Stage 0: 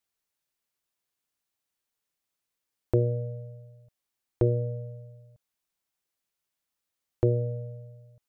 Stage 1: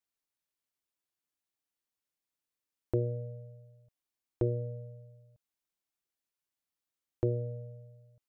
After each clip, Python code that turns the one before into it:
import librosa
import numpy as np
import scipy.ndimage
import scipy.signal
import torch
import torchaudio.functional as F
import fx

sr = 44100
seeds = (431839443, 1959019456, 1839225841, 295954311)

y = fx.peak_eq(x, sr, hz=300.0, db=4.5, octaves=0.37)
y = y * librosa.db_to_amplitude(-7.0)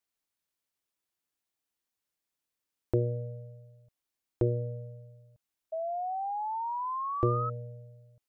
y = fx.spec_paint(x, sr, seeds[0], shape='rise', start_s=5.72, length_s=1.78, low_hz=640.0, high_hz=1300.0, level_db=-36.0)
y = y * librosa.db_to_amplitude(2.5)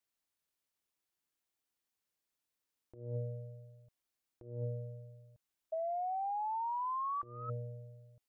y = fx.over_compress(x, sr, threshold_db=-34.0, ratio=-0.5)
y = y * librosa.db_to_amplitude(-4.0)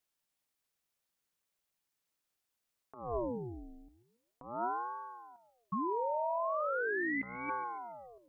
y = fx.echo_feedback(x, sr, ms=141, feedback_pct=41, wet_db=-15.5)
y = fx.ring_lfo(y, sr, carrier_hz=570.0, swing_pct=75, hz=0.4)
y = y * librosa.db_to_amplitude(5.5)